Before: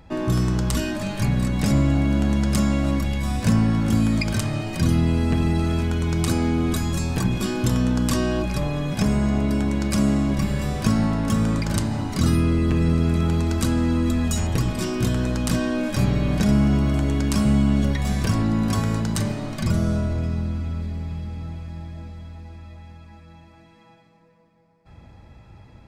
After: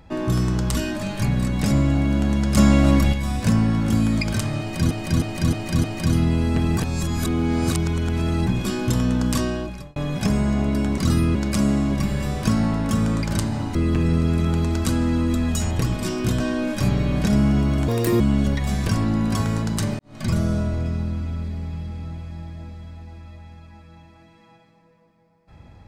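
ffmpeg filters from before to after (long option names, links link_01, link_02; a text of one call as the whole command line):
ffmpeg -i in.wav -filter_complex "[0:a]asplit=17[link_01][link_02][link_03][link_04][link_05][link_06][link_07][link_08][link_09][link_10][link_11][link_12][link_13][link_14][link_15][link_16][link_17];[link_01]atrim=end=2.572[link_18];[link_02]atrim=start=2.568:end=3.132,asetpts=PTS-STARTPTS,volume=6dB[link_19];[link_03]atrim=start=3.128:end=4.912[link_20];[link_04]atrim=start=4.598:end=4.912[link_21];[link_05]atrim=start=4.598:end=4.912[link_22];[link_06]atrim=start=4.598:end=4.912[link_23];[link_07]atrim=start=4.598:end=5.532[link_24];[link_08]atrim=start=5.528:end=7.232,asetpts=PTS-STARTPTS,areverse[link_25];[link_09]atrim=start=7.228:end=8.72,asetpts=PTS-STARTPTS,afade=type=out:start_time=0.892:duration=0.6[link_26];[link_10]atrim=start=8.72:end=9.742,asetpts=PTS-STARTPTS,afade=type=in:duration=0.004:curve=hsin[link_27];[link_11]atrim=start=12.138:end=12.512[link_28];[link_12]atrim=start=9.738:end=12.142[link_29];[link_13]atrim=start=12.508:end=15.162[link_30];[link_14]atrim=start=15.558:end=17.044[link_31];[link_15]atrim=start=17.04:end=17.58,asetpts=PTS-STARTPTS,asetrate=74088,aresample=44100[link_32];[link_16]atrim=start=17.576:end=19.37,asetpts=PTS-STARTPTS,afade=type=out:start_time=1.79:duration=0.004:curve=hsin[link_33];[link_17]atrim=start=19.37,asetpts=PTS-STARTPTS,afade=type=in:duration=0.27:curve=qua[link_34];[link_18][link_19]acrossfade=duration=0.004:curve1=hsin:curve2=hsin[link_35];[link_35][link_20]acrossfade=duration=0.004:curve1=hsin:curve2=hsin[link_36];[link_36][link_21]acrossfade=duration=0.004:curve1=hsin:curve2=hsin[link_37];[link_37][link_22]acrossfade=duration=0.004:curve1=hsin:curve2=hsin[link_38];[link_38][link_23]acrossfade=duration=0.004:curve1=hsin:curve2=hsin[link_39];[link_39][link_24]acrossfade=duration=0.004:curve1=hsin:curve2=hsin[link_40];[link_40][link_25]acrossfade=duration=0.004:curve1=hsin:curve2=hsin[link_41];[link_26][link_27]concat=n=2:v=0:a=1[link_42];[link_41][link_42]acrossfade=duration=0.004:curve1=hsin:curve2=hsin[link_43];[link_43][link_28]acrossfade=duration=0.004:curve1=hsin:curve2=hsin[link_44];[link_44][link_29]acrossfade=duration=0.004:curve1=hsin:curve2=hsin[link_45];[link_45][link_30]acrossfade=duration=0.004:curve1=hsin:curve2=hsin[link_46];[link_46][link_31]acrossfade=duration=0.004:curve1=hsin:curve2=hsin[link_47];[link_47][link_32]acrossfade=duration=0.004:curve1=hsin:curve2=hsin[link_48];[link_33][link_34]concat=n=2:v=0:a=1[link_49];[link_48][link_49]acrossfade=duration=0.004:curve1=hsin:curve2=hsin" out.wav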